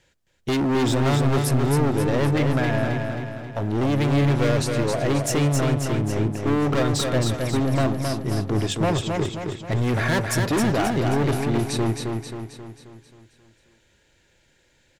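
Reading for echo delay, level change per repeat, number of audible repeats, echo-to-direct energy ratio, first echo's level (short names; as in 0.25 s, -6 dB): 0.267 s, -6.0 dB, 6, -3.0 dB, -4.5 dB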